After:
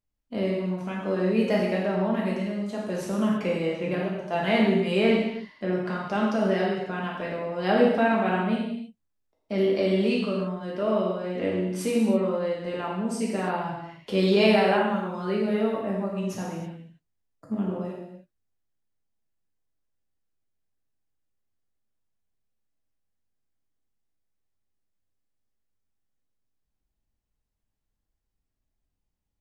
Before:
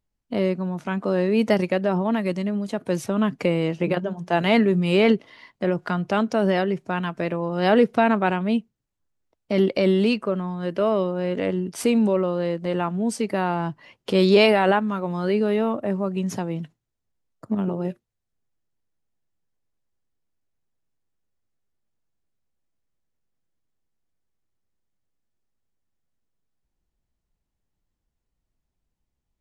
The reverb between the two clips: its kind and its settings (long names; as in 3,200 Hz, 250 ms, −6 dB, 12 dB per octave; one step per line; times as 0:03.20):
reverb whose tail is shaped and stops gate 350 ms falling, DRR −4.5 dB
level −9 dB